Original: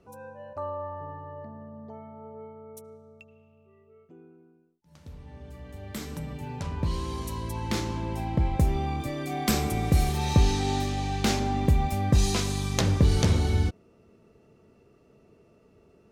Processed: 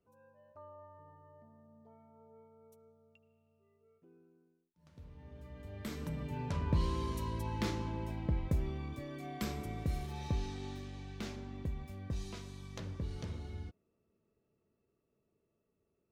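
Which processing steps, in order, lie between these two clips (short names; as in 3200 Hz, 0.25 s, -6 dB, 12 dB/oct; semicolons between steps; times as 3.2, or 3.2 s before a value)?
Doppler pass-by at 6.65, 6 m/s, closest 5.5 m; bell 9900 Hz -7 dB 1.9 oct; notch 780 Hz, Q 12; gain -2.5 dB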